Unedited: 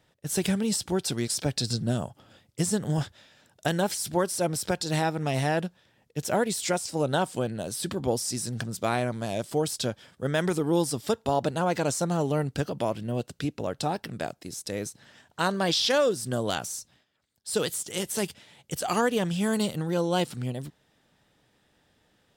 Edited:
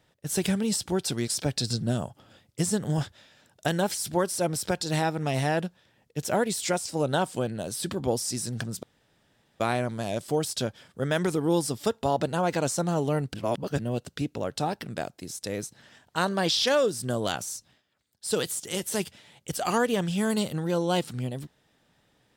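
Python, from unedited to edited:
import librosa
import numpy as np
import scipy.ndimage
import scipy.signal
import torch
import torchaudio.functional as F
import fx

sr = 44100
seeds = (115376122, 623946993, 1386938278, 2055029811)

y = fx.edit(x, sr, fx.insert_room_tone(at_s=8.83, length_s=0.77),
    fx.reverse_span(start_s=12.57, length_s=0.45), tone=tone)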